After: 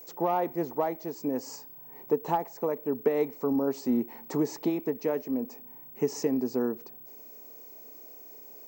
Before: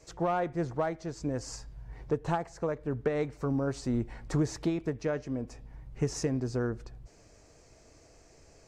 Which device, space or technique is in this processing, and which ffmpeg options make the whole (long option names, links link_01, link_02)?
old television with a line whistle: -af "highpass=frequency=190:width=0.5412,highpass=frequency=190:width=1.3066,equalizer=frequency=250:width_type=q:width=4:gain=6,equalizer=frequency=420:width_type=q:width=4:gain=6,equalizer=frequency=890:width_type=q:width=4:gain=7,equalizer=frequency=1500:width_type=q:width=4:gain=-8,equalizer=frequency=3600:width_type=q:width=4:gain=-3,lowpass=frequency=8200:width=0.5412,lowpass=frequency=8200:width=1.3066,aeval=exprs='val(0)+0.00562*sin(2*PI*15734*n/s)':channel_layout=same"